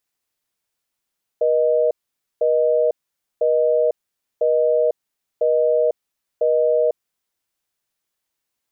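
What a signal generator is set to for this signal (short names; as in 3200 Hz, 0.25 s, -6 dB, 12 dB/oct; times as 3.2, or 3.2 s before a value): call progress tone busy tone, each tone -17 dBFS 5.63 s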